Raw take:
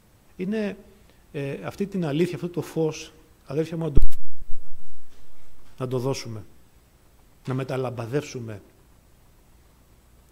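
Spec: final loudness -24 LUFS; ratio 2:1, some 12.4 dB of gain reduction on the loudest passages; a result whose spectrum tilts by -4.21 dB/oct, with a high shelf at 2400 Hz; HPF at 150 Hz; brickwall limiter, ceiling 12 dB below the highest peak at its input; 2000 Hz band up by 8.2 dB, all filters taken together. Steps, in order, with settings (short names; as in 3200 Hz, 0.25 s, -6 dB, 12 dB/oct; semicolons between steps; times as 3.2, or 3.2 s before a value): HPF 150 Hz; bell 2000 Hz +6.5 dB; high shelf 2400 Hz +7.5 dB; compressor 2:1, threshold -42 dBFS; gain +21 dB; limiter -10 dBFS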